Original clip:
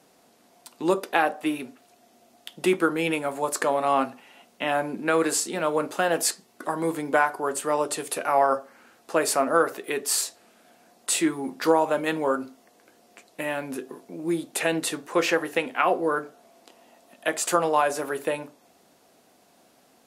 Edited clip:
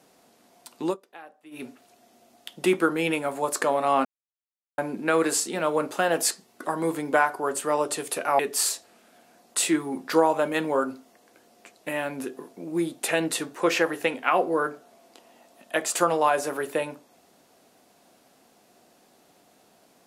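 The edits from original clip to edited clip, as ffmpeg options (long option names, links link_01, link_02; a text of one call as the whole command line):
ffmpeg -i in.wav -filter_complex "[0:a]asplit=6[link_01][link_02][link_03][link_04][link_05][link_06];[link_01]atrim=end=0.97,asetpts=PTS-STARTPTS,afade=type=out:start_time=0.84:duration=0.13:silence=0.0707946[link_07];[link_02]atrim=start=0.97:end=1.51,asetpts=PTS-STARTPTS,volume=-23dB[link_08];[link_03]atrim=start=1.51:end=4.05,asetpts=PTS-STARTPTS,afade=type=in:duration=0.13:silence=0.0707946,afade=type=out:start_time=2.536:duration=0.004:curve=hsin[link_09];[link_04]atrim=start=4.05:end=4.78,asetpts=PTS-STARTPTS,volume=0[link_10];[link_05]atrim=start=4.78:end=8.392,asetpts=PTS-STARTPTS,afade=type=in:duration=0.004:curve=hsin[link_11];[link_06]atrim=start=9.908[link_12];[link_07][link_08][link_09][link_10][link_11]concat=n=5:v=0:a=1[link_13];[link_13][link_12]acrossfade=duration=0.004:curve1=hsin:curve2=hsin" out.wav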